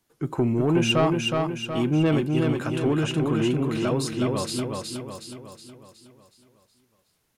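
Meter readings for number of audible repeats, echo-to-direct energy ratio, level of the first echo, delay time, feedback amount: 6, −2.5 dB, −3.5 dB, 368 ms, 50%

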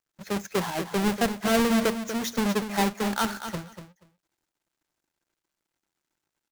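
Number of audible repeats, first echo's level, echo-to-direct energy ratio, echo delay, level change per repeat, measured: 2, −10.0 dB, −10.0 dB, 240 ms, −16.0 dB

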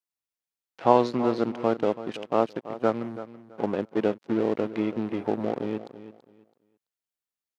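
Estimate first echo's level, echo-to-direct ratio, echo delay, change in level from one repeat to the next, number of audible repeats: −14.0 dB, −13.5 dB, 331 ms, −13.0 dB, 2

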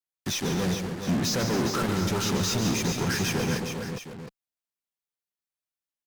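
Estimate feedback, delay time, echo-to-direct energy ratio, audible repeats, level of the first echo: repeats not evenly spaced, 145 ms, −3.0 dB, 5, −8.5 dB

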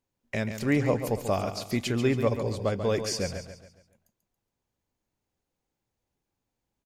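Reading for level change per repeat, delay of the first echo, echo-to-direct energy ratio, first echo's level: −7.5 dB, 139 ms, −8.0 dB, −9.0 dB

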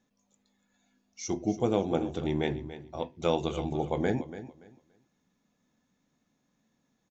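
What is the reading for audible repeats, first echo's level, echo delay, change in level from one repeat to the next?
2, −13.5 dB, 286 ms, −13.0 dB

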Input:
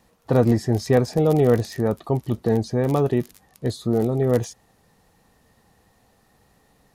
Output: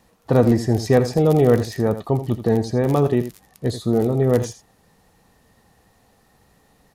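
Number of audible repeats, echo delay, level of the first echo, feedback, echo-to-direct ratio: 1, 83 ms, −12.0 dB, repeats not evenly spaced, −12.0 dB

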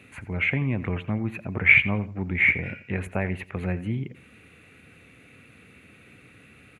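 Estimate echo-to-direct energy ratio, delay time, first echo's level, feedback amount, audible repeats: −15.5 dB, 86 ms, −16.0 dB, 26%, 2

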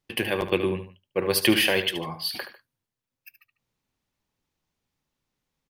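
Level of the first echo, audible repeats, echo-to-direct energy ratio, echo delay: −11.0 dB, 2, −10.5 dB, 74 ms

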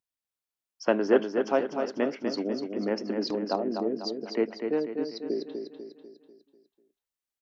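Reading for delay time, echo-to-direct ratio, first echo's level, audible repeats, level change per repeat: 247 ms, −5.0 dB, −6.0 dB, 5, −6.5 dB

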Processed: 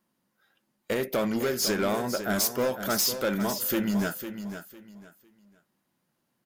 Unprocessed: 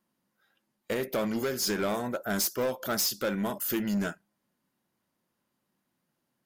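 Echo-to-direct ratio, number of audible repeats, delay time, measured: −9.5 dB, 3, 503 ms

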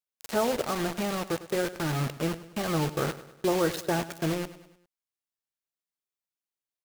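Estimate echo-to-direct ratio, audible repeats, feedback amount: −14.5 dB, 4, 49%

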